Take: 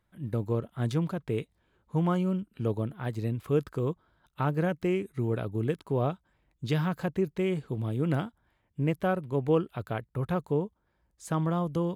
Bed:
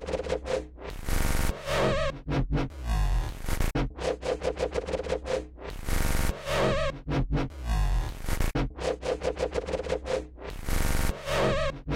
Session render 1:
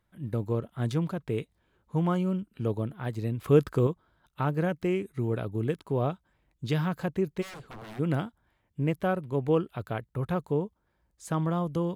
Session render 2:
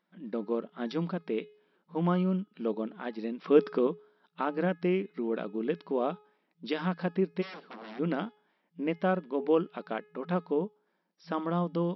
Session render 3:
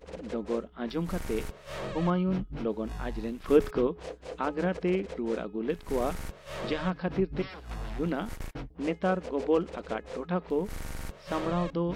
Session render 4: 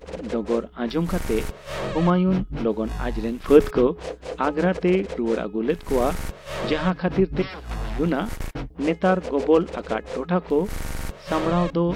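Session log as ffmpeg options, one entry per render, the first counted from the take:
-filter_complex "[0:a]asettb=1/sr,asplit=3[a][b][c];[a]atrim=end=3.414[d];[b]atrim=start=3.41:end=3.87,asetpts=PTS-STARTPTS,afade=t=in:d=0.004:c=qsin,afade=t=out:st=0.456:d=0.004:c=qsin,acontrast=50[e];[c]atrim=start=3.866[f];[d][e]acrossfade=d=0.004:c1=hsin:c2=qsin[g];[g][f]acrossfade=d=0.004:c1=qsin:c2=hsin,asplit=3[h][i][j];[h]afade=t=out:st=7.41:d=0.02[k];[i]aeval=exprs='0.0119*(abs(mod(val(0)/0.0119+3,4)-2)-1)':c=same,afade=t=in:st=7.41:d=0.02,afade=t=out:st=7.98:d=0.02[l];[j]afade=t=in:st=7.98:d=0.02[m];[k][l][m]amix=inputs=3:normalize=0"
-af "bandreject=f=421.2:t=h:w=4,bandreject=f=842.4:t=h:w=4,bandreject=f=1.2636k:t=h:w=4,bandreject=f=1.6848k:t=h:w=4,bandreject=f=2.106k:t=h:w=4,bandreject=f=2.5272k:t=h:w=4,bandreject=f=2.9484k:t=h:w=4,bandreject=f=3.3696k:t=h:w=4,bandreject=f=3.7908k:t=h:w=4,bandreject=f=4.212k:t=h:w=4,bandreject=f=4.6332k:t=h:w=4,bandreject=f=5.0544k:t=h:w=4,bandreject=f=5.4756k:t=h:w=4,bandreject=f=5.8968k:t=h:w=4,bandreject=f=6.318k:t=h:w=4,bandreject=f=6.7392k:t=h:w=4,bandreject=f=7.1604k:t=h:w=4,bandreject=f=7.5816k:t=h:w=4,bandreject=f=8.0028k:t=h:w=4,bandreject=f=8.424k:t=h:w=4,bandreject=f=8.8452k:t=h:w=4,bandreject=f=9.2664k:t=h:w=4,bandreject=f=9.6876k:t=h:w=4,bandreject=f=10.1088k:t=h:w=4,bandreject=f=10.53k:t=h:w=4,bandreject=f=10.9512k:t=h:w=4,bandreject=f=11.3724k:t=h:w=4,bandreject=f=11.7936k:t=h:w=4,bandreject=f=12.2148k:t=h:w=4,bandreject=f=12.636k:t=h:w=4,bandreject=f=13.0572k:t=h:w=4,bandreject=f=13.4784k:t=h:w=4,afftfilt=real='re*between(b*sr/4096,170,5700)':imag='im*between(b*sr/4096,170,5700)':win_size=4096:overlap=0.75"
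-filter_complex "[1:a]volume=-11.5dB[a];[0:a][a]amix=inputs=2:normalize=0"
-af "volume=8dB"

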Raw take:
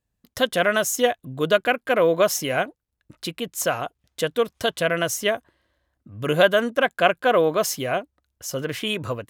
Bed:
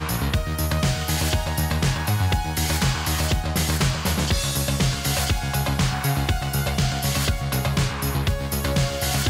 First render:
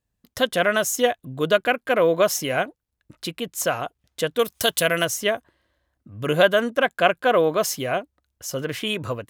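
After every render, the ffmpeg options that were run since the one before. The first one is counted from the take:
-filter_complex "[0:a]asettb=1/sr,asplit=3[a][b][c];[a]atrim=end=4.394[d];[b]atrim=start=4.39:end=5.05,asetpts=PTS-STARTPTS,afade=t=in:d=0.004:c=qsin,afade=t=out:st=0.656:d=0.004:c=qsin,aemphasis=mode=production:type=75kf[e];[c]atrim=start=5.046[f];[d][e]acrossfade=d=0.004:c1=hsin:c2=qsin[g];[g][f]acrossfade=d=0.004:c1=qsin:c2=hsin"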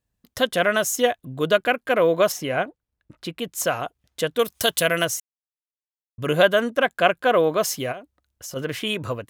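-filter_complex "[0:a]asettb=1/sr,asplit=3[a][b][c];[a]atrim=end=2.324[d];[b]atrim=start=2.32:end=3.39,asetpts=PTS-STARTPTS,afade=t=in:d=0.004:c=qsin,afade=t=out:st=1.066:d=0.004:c=qsin,highshelf=f=4k:g=-10[e];[c]atrim=start=3.386[f];[d][e]acrossfade=d=0.004:c1=hsin:c2=qsin[g];[g][f]acrossfade=d=0.004:c1=qsin:c2=hsin,asplit=3[h][i][j];[h]afade=t=out:st=7.91:d=0.02[k];[i]acompressor=threshold=-31dB:ratio=12:attack=3.2:release=140:knee=1:detection=peak,afade=t=in:st=7.91:d=0.02,afade=t=out:st=8.55:d=0.02[l];[j]afade=t=in:st=8.55:d=0.02[m];[k][l][m]amix=inputs=3:normalize=0,asplit=3[n][o][p];[n]atrim=end=5.2,asetpts=PTS-STARTPTS,afade=t=out:st=5.196:d=0.004:c=hsin[q];[o]atrim=start=5.2:end=6.18,asetpts=PTS-STARTPTS,volume=0[r];[p]atrim=start=6.18,asetpts=PTS-STARTPTS,afade=t=in:d=0.004:c=hsin[s];[q][r][s]concat=n=3:v=0:a=1"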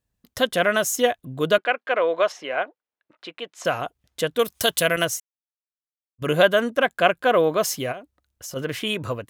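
-filter_complex "[0:a]asettb=1/sr,asplit=3[a][b][c];[a]atrim=end=1.584[d];[b]atrim=start=1.58:end=3.65,asetpts=PTS-STARTPTS,afade=t=in:d=0.004:c=qsin,afade=t=out:st=2.066:d=0.004:c=qsin,highpass=510,lowpass=3.6k[e];[c]atrim=start=3.646[f];[d][e]acrossfade=d=0.004:c1=hsin:c2=qsin[g];[g][f]acrossfade=d=0.004:c1=qsin:c2=hsin,asettb=1/sr,asplit=3[h][i][j];[h]atrim=end=4.964[k];[i]atrim=start=4.96:end=6.22,asetpts=PTS-STARTPTS,afade=t=in:d=0.004:c=qsin,afade=t=out:st=1.256:d=0.004:c=qsin,agate=range=-33dB:threshold=-27dB:ratio=3:release=100:detection=peak[l];[j]atrim=start=6.216[m];[k][l]acrossfade=d=0.004:c1=hsin:c2=qsin[n];[n][m]acrossfade=d=0.004:c1=qsin:c2=hsin"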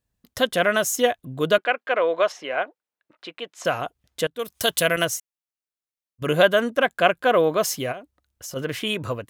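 -filter_complex "[0:a]asplit=2[a][b];[a]atrim=end=4.27,asetpts=PTS-STARTPTS,afade=t=out:st=4.266:d=0.004:c=hsin:silence=0.105925[c];[b]atrim=start=4.27,asetpts=PTS-STARTPTS,afade=t=in:d=0.45:silence=0.105925[d];[c][d]concat=n=2:v=0:a=1"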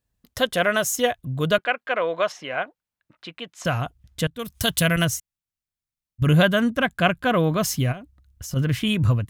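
-af "asubboost=boost=11:cutoff=140"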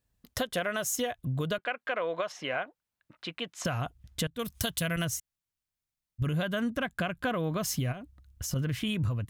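-af "alimiter=limit=-15dB:level=0:latency=1:release=220,acompressor=threshold=-29dB:ratio=3"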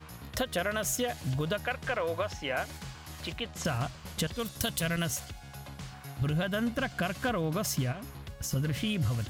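-filter_complex "[1:a]volume=-21.5dB[a];[0:a][a]amix=inputs=2:normalize=0"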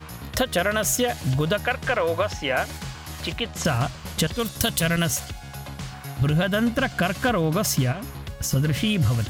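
-af "volume=8.5dB"

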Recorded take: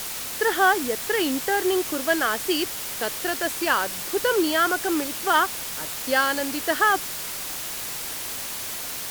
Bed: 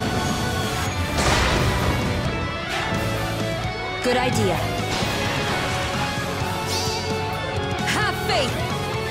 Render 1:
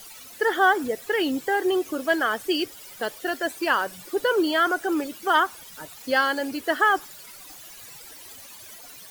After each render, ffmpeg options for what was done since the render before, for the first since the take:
-af "afftdn=nr=16:nf=-32"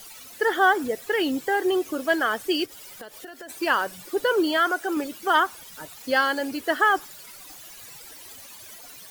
-filter_complex "[0:a]asplit=3[a][b][c];[a]afade=t=out:st=2.65:d=0.02[d];[b]acompressor=threshold=-36dB:ratio=12:attack=3.2:release=140:knee=1:detection=peak,afade=t=in:st=2.65:d=0.02,afade=t=out:st=3.48:d=0.02[e];[c]afade=t=in:st=3.48:d=0.02[f];[d][e][f]amix=inputs=3:normalize=0,asettb=1/sr,asplit=3[g][h][i];[g]atrim=end=4.574[j];[h]atrim=start=4.57:end=4.97,asetpts=PTS-STARTPTS,afade=t=in:d=0.004:c=qsin,afade=t=out:st=0.396:d=0.004:c=qsin,lowshelf=f=240:g=-8.5[k];[i]atrim=start=4.966[l];[j][k]acrossfade=d=0.004:c1=hsin:c2=qsin[m];[m][l]acrossfade=d=0.004:c1=qsin:c2=hsin"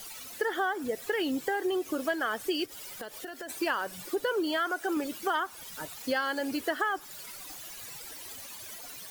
-af "acompressor=threshold=-27dB:ratio=5"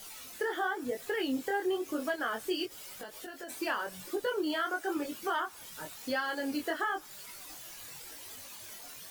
-af "flanger=delay=19.5:depth=5.4:speed=0.96"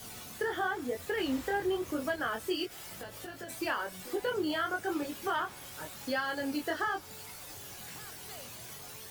-filter_complex "[1:a]volume=-29dB[a];[0:a][a]amix=inputs=2:normalize=0"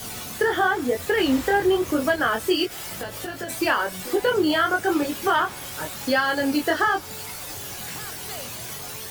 -af "volume=11.5dB"

